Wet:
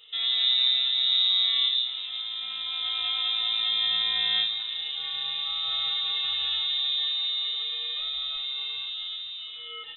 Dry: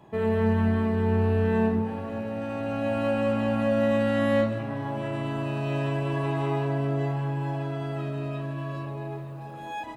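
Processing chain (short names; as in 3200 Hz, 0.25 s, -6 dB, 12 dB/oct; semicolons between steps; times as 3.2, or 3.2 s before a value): dynamic EQ 760 Hz, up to -7 dB, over -40 dBFS, Q 0.82; inverted band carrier 3800 Hz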